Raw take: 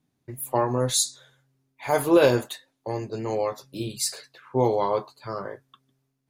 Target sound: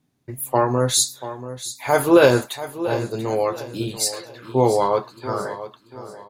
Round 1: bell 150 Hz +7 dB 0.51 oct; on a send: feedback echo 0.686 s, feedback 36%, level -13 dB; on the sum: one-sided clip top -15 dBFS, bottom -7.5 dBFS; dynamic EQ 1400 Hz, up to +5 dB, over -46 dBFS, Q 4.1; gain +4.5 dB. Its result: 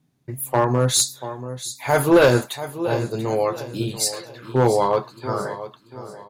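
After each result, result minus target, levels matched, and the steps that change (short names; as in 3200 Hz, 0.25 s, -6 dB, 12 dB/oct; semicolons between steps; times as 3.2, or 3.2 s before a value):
one-sided clip: distortion +16 dB; 125 Hz band +3.5 dB
change: one-sided clip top -7 dBFS, bottom -7.5 dBFS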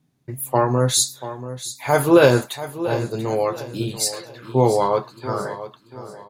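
125 Hz band +3.0 dB
remove: bell 150 Hz +7 dB 0.51 oct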